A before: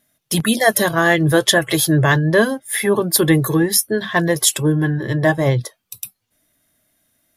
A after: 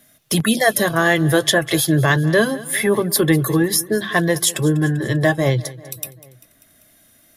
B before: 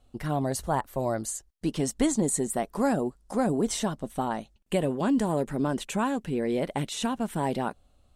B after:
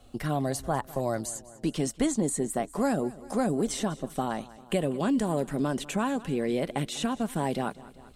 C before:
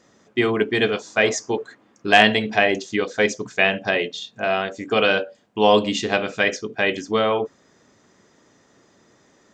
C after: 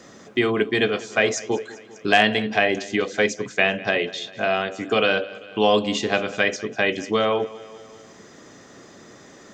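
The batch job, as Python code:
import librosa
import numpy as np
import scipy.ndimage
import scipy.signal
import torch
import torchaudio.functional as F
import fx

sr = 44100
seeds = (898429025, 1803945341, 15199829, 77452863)

y = fx.notch(x, sr, hz=920.0, q=12.0)
y = fx.echo_feedback(y, sr, ms=196, feedback_pct=48, wet_db=-20.5)
y = fx.band_squash(y, sr, depth_pct=40)
y = F.gain(torch.from_numpy(y), -1.0).numpy()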